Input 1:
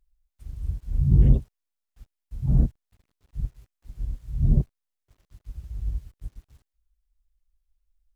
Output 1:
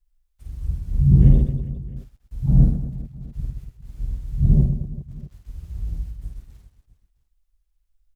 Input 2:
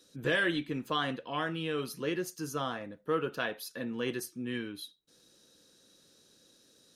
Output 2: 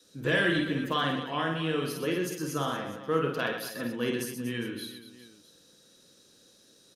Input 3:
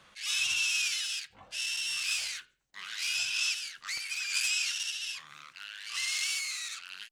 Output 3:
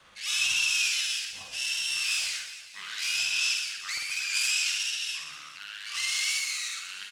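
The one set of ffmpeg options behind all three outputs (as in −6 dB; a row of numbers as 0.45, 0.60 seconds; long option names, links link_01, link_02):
-af "adynamicequalizer=threshold=0.01:dfrequency=170:dqfactor=1.6:tfrequency=170:tqfactor=1.6:attack=5:release=100:ratio=0.375:range=2.5:mode=boostabove:tftype=bell,aecho=1:1:50|125|237.5|406.2|659.4:0.631|0.398|0.251|0.158|0.1,volume=1.5dB"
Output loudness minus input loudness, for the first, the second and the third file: +5.0, +4.0, +3.5 LU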